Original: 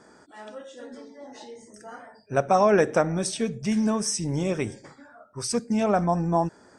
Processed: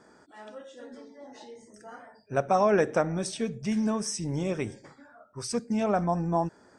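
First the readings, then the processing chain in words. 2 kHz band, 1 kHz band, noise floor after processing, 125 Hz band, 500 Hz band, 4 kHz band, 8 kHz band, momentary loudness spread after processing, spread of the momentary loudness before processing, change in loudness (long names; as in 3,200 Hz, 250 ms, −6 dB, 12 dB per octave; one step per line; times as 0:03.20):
−3.5 dB, −3.5 dB, −58 dBFS, −3.5 dB, −3.5 dB, −5.0 dB, −6.0 dB, 23 LU, 23 LU, −3.5 dB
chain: high-shelf EQ 7,700 Hz −5.5 dB
level −3.5 dB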